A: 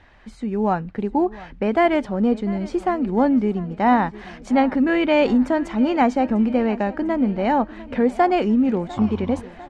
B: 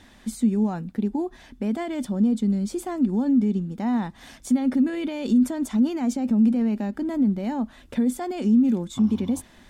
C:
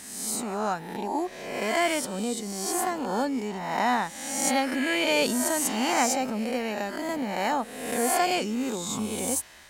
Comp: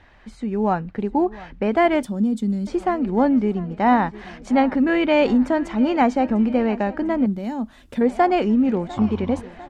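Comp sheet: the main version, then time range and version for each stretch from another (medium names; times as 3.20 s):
A
2.03–2.67 s: from B
7.26–8.01 s: from B
not used: C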